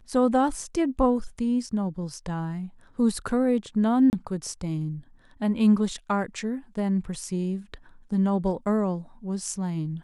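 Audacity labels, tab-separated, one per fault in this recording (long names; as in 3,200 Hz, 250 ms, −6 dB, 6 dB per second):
4.100000	4.130000	drop-out 29 ms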